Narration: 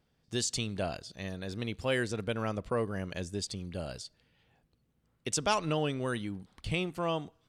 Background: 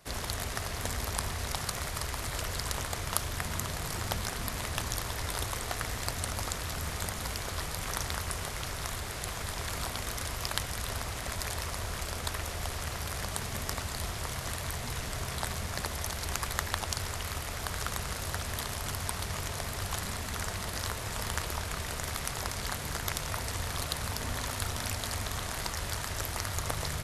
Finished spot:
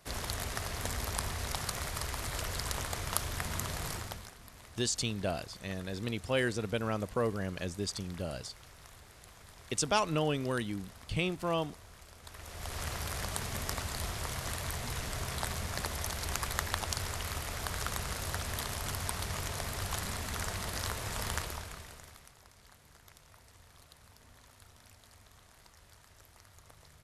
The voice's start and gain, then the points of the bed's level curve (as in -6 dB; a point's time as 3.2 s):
4.45 s, 0.0 dB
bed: 3.9 s -2 dB
4.37 s -18 dB
12.19 s -18 dB
12.81 s -1.5 dB
21.35 s -1.5 dB
22.38 s -24 dB